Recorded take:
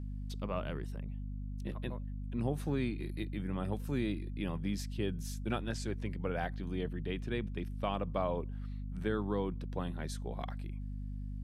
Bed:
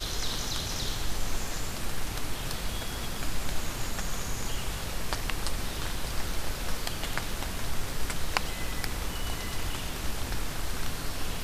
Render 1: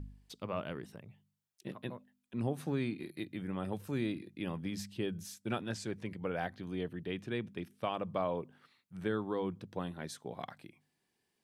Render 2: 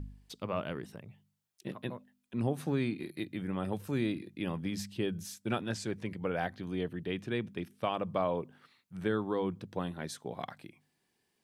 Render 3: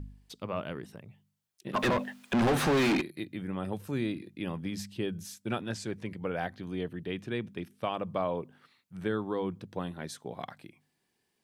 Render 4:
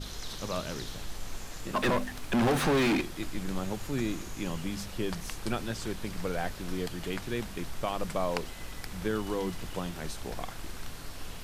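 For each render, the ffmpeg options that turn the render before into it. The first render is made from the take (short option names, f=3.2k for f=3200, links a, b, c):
-af "bandreject=f=50:t=h:w=4,bandreject=f=100:t=h:w=4,bandreject=f=150:t=h:w=4,bandreject=f=200:t=h:w=4,bandreject=f=250:t=h:w=4"
-af "volume=3dB"
-filter_complex "[0:a]asplit=3[a][b][c];[a]afade=t=out:st=1.73:d=0.02[d];[b]asplit=2[e][f];[f]highpass=f=720:p=1,volume=39dB,asoftclip=type=tanh:threshold=-18dB[g];[e][g]amix=inputs=2:normalize=0,lowpass=f=2.6k:p=1,volume=-6dB,afade=t=in:st=1.73:d=0.02,afade=t=out:st=3:d=0.02[h];[c]afade=t=in:st=3:d=0.02[i];[d][h][i]amix=inputs=3:normalize=0"
-filter_complex "[1:a]volume=-8.5dB[a];[0:a][a]amix=inputs=2:normalize=0"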